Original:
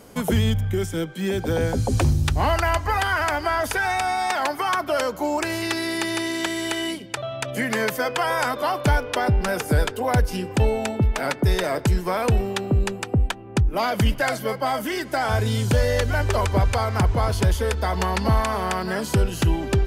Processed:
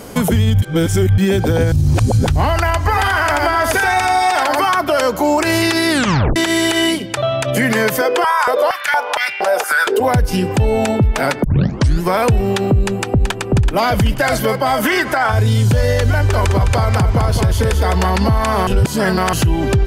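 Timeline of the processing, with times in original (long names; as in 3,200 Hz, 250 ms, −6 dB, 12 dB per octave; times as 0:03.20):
0:00.62–0:01.18: reverse
0:01.72–0:02.27: reverse
0:02.80–0:04.66: single-tap delay 84 ms −3.5 dB
0:05.90: tape stop 0.46 s
0:08.01–0:10.00: high-pass on a step sequencer 4.3 Hz 380–2,300 Hz
0:11.44: tape start 0.59 s
0:12.76–0:13.36: delay throw 380 ms, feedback 45%, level −6.5 dB
0:14.83–0:15.32: parametric band 1,300 Hz +11 dB 2.1 octaves
0:16.12–0:18.10: single-tap delay 208 ms −7 dB
0:18.67–0:19.33: reverse
whole clip: dynamic equaliser 120 Hz, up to +6 dB, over −34 dBFS, Q 1.2; downward compressor 2.5 to 1, threshold −24 dBFS; boost into a limiter +19 dB; level −5.5 dB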